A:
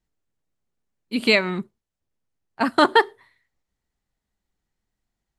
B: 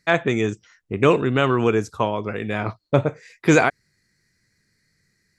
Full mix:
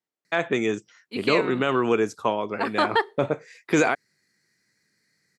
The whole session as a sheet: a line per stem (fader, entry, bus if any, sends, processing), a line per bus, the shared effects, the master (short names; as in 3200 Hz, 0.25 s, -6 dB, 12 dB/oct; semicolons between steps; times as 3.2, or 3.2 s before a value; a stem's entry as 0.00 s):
-4.0 dB, 0.00 s, no send, HPF 320 Hz 12 dB/oct; high shelf 8400 Hz -9 dB
-1.5 dB, 0.25 s, no send, HPF 210 Hz 12 dB/oct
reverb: off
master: limiter -9.5 dBFS, peak gain reduction 6 dB